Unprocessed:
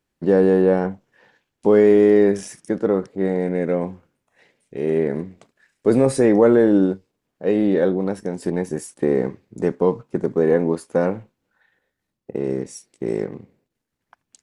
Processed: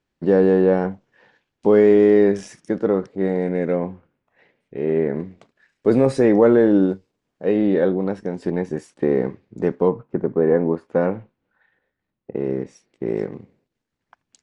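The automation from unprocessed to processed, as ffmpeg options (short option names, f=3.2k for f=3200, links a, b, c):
-af "asetnsamples=n=441:p=0,asendcmd='3.76 lowpass f 2700;5.2 lowpass f 5100;6.89 lowpass f 7900;7.46 lowpass f 4100;9.88 lowpass f 1800;10.89 lowpass f 2900;13.17 lowpass f 6200',lowpass=5.7k"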